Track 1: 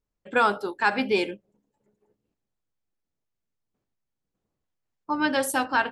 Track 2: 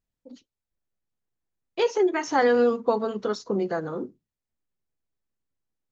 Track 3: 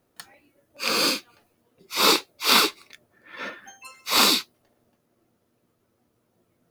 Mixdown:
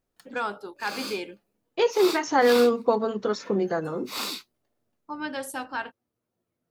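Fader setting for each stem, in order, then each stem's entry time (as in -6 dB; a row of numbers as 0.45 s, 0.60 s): -8.5 dB, +1.0 dB, -13.5 dB; 0.00 s, 0.00 s, 0.00 s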